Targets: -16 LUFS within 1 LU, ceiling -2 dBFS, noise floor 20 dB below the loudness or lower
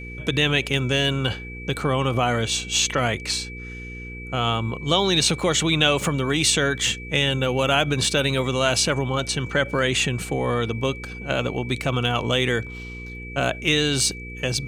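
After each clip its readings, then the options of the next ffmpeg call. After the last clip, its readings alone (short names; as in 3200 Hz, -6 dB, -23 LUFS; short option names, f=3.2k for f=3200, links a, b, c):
hum 60 Hz; harmonics up to 480 Hz; hum level -34 dBFS; steady tone 2300 Hz; tone level -37 dBFS; loudness -22.0 LUFS; peak -4.5 dBFS; loudness target -16.0 LUFS
-> -af "bandreject=f=60:t=h:w=4,bandreject=f=120:t=h:w=4,bandreject=f=180:t=h:w=4,bandreject=f=240:t=h:w=4,bandreject=f=300:t=h:w=4,bandreject=f=360:t=h:w=4,bandreject=f=420:t=h:w=4,bandreject=f=480:t=h:w=4"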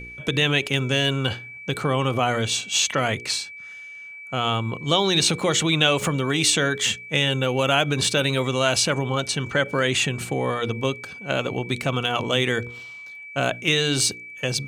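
hum none; steady tone 2300 Hz; tone level -37 dBFS
-> -af "bandreject=f=2.3k:w=30"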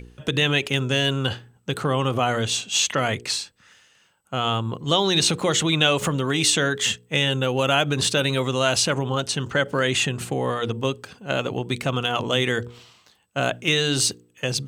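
steady tone none; loudness -22.5 LUFS; peak -5.0 dBFS; loudness target -16.0 LUFS
-> -af "volume=6.5dB,alimiter=limit=-2dB:level=0:latency=1"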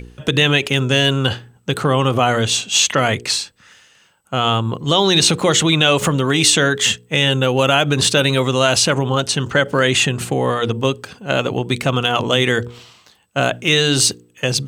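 loudness -16.0 LUFS; peak -2.0 dBFS; noise floor -54 dBFS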